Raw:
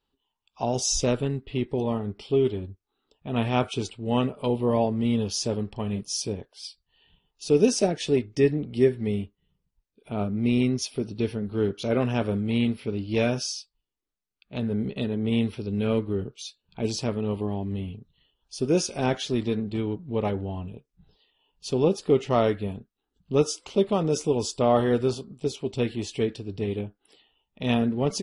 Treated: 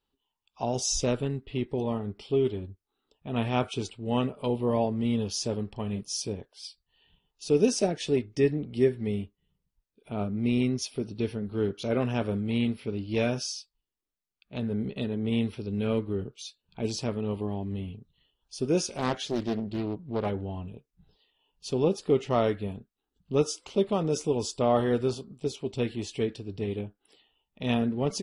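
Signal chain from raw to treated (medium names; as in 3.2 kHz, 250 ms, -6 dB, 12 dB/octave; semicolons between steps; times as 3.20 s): 18.89–20.26 s: loudspeaker Doppler distortion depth 0.55 ms; trim -3 dB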